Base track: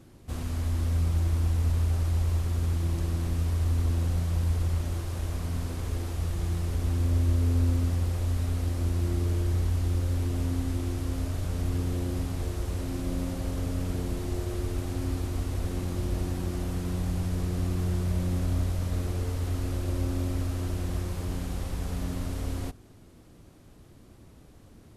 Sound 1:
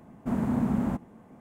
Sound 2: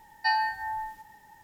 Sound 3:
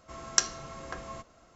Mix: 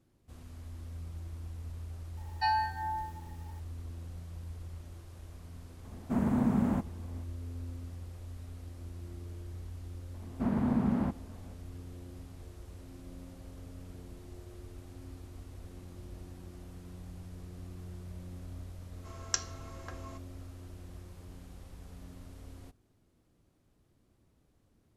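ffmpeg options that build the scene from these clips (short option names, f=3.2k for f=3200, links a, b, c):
-filter_complex "[1:a]asplit=2[a][b];[0:a]volume=-17dB[c];[2:a]aecho=1:1:2.5:0.59[d];[b]aresample=11025,aresample=44100[e];[d]atrim=end=1.43,asetpts=PTS-STARTPTS,volume=-5dB,afade=t=in:d=0.004:c=hsin,afade=t=out:st=1.426:d=0.004:c=hsin,adelay=2170[f];[a]atrim=end=1.4,asetpts=PTS-STARTPTS,volume=-1.5dB,afade=t=in:d=0.004:c=hsin,afade=t=out:st=1.396:d=0.004:c=hsin,adelay=5840[g];[e]atrim=end=1.4,asetpts=PTS-STARTPTS,volume=-2.5dB,afade=t=in:d=0.004:c=hsin,afade=t=out:st=1.396:d=0.004:c=hsin,adelay=10140[h];[3:a]atrim=end=1.55,asetpts=PTS-STARTPTS,volume=-7.5dB,afade=t=in:d=0.004:c=hsin,afade=t=out:st=1.546:d=0.004:c=hsin,adelay=18960[i];[c][f][g][h][i]amix=inputs=5:normalize=0"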